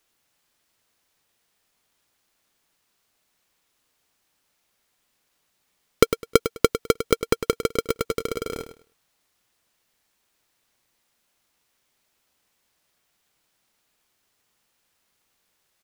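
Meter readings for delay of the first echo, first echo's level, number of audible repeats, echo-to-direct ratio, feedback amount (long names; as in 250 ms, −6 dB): 103 ms, −10.5 dB, 2, −10.5 dB, 21%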